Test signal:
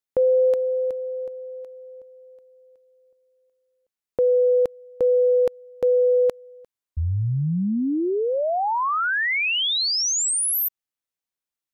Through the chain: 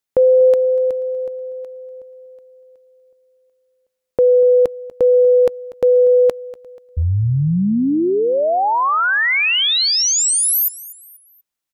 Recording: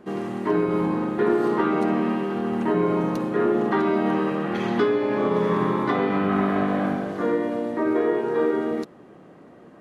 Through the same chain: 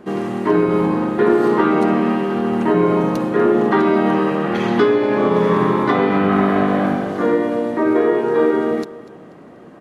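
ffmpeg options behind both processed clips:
-af "aecho=1:1:242|484|726:0.119|0.0464|0.0181,volume=6.5dB"

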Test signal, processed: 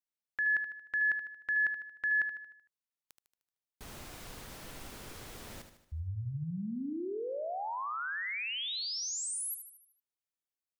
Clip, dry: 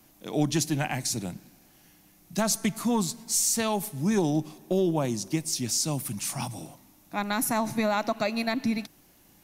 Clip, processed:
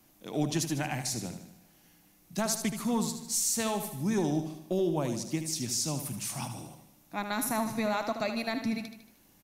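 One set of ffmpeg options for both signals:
-af "aecho=1:1:76|152|228|304|380|456:0.355|0.177|0.0887|0.0444|0.0222|0.0111,volume=-4.5dB"

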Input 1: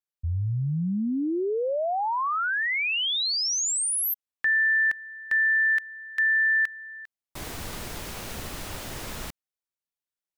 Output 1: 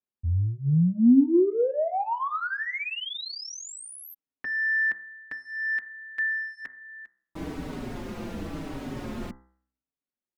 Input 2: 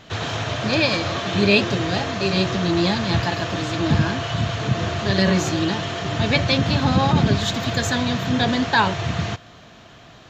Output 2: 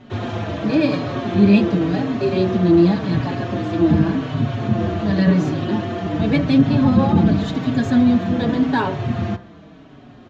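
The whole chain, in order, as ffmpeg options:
-filter_complex "[0:a]lowpass=f=1.5k:p=1,bandreject=f=64.14:t=h:w=4,bandreject=f=128.28:t=h:w=4,bandreject=f=192.42:t=h:w=4,bandreject=f=256.56:t=h:w=4,bandreject=f=320.7:t=h:w=4,bandreject=f=384.84:t=h:w=4,bandreject=f=448.98:t=h:w=4,bandreject=f=513.12:t=h:w=4,bandreject=f=577.26:t=h:w=4,bandreject=f=641.4:t=h:w=4,bandreject=f=705.54:t=h:w=4,bandreject=f=769.68:t=h:w=4,bandreject=f=833.82:t=h:w=4,bandreject=f=897.96:t=h:w=4,bandreject=f=962.1:t=h:w=4,bandreject=f=1.02624k:t=h:w=4,bandreject=f=1.09038k:t=h:w=4,bandreject=f=1.15452k:t=h:w=4,bandreject=f=1.21866k:t=h:w=4,bandreject=f=1.2828k:t=h:w=4,bandreject=f=1.34694k:t=h:w=4,bandreject=f=1.41108k:t=h:w=4,bandreject=f=1.47522k:t=h:w=4,bandreject=f=1.53936k:t=h:w=4,bandreject=f=1.6035k:t=h:w=4,bandreject=f=1.66764k:t=h:w=4,bandreject=f=1.73178k:t=h:w=4,bandreject=f=1.79592k:t=h:w=4,bandreject=f=1.86006k:t=h:w=4,bandreject=f=1.9242k:t=h:w=4,bandreject=f=1.98834k:t=h:w=4,bandreject=f=2.05248k:t=h:w=4,asplit=2[a][b];[b]asoftclip=type=tanh:threshold=-24dB,volume=-11dB[c];[a][c]amix=inputs=2:normalize=0,equalizer=f=260:t=o:w=1.3:g=11.5,asplit=2[d][e];[e]adelay=5,afreqshift=-0.89[f];[d][f]amix=inputs=2:normalize=1"

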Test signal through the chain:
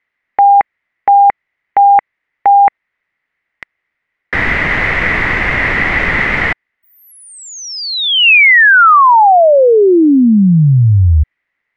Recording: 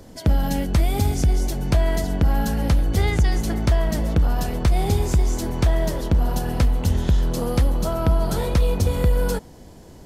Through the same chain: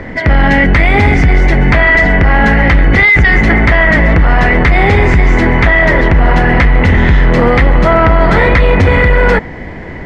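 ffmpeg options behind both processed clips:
-af "lowpass=f=2k:t=q:w=9,apsyclip=21dB,volume=-3dB"

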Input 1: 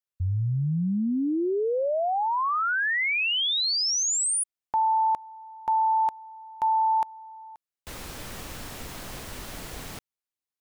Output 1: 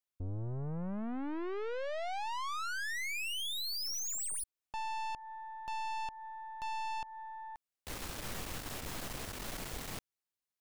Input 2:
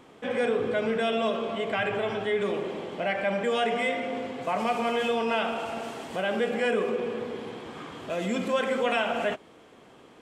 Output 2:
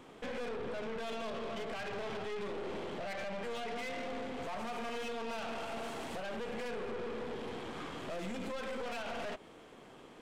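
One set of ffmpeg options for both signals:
-af "alimiter=level_in=2dB:limit=-24dB:level=0:latency=1:release=167,volume=-2dB,aeval=exprs='(tanh(89.1*val(0)+0.65)-tanh(0.65))/89.1':c=same,volume=1.5dB"

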